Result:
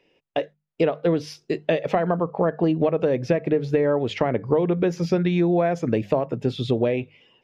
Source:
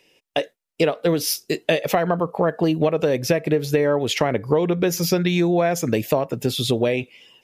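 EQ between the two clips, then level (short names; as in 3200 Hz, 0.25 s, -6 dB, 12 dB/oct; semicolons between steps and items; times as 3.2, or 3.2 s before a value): tape spacing loss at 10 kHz 28 dB; notches 50/100/150/200 Hz; 0.0 dB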